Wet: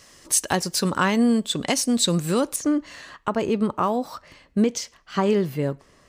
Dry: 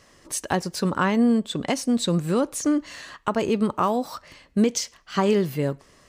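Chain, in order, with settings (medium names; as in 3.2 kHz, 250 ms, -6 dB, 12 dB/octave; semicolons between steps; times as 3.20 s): treble shelf 2.9 kHz +10 dB, from 2.56 s -4 dB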